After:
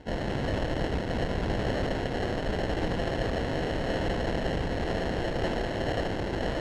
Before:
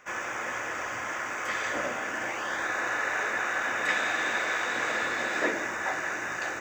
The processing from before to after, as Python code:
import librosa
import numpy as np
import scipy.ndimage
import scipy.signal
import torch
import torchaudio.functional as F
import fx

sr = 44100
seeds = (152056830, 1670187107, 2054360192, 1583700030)

p1 = fx.rider(x, sr, range_db=10, speed_s=2.0)
p2 = p1 + fx.echo_split(p1, sr, split_hz=2000.0, low_ms=555, high_ms=203, feedback_pct=52, wet_db=-4.0, dry=0)
p3 = fx.sample_hold(p2, sr, seeds[0], rate_hz=1200.0, jitter_pct=0)
p4 = fx.room_early_taps(p3, sr, ms=(29, 78), db=(-13.0, -11.0))
p5 = fx.quant_companded(p4, sr, bits=4)
p6 = fx.tube_stage(p5, sr, drive_db=25.0, bias=0.65)
p7 = scipy.signal.sosfilt(scipy.signal.butter(2, 4300.0, 'lowpass', fs=sr, output='sos'), p6)
p8 = fx.low_shelf(p7, sr, hz=80.0, db=9.5)
y = p8 * librosa.db_to_amplitude(1.5)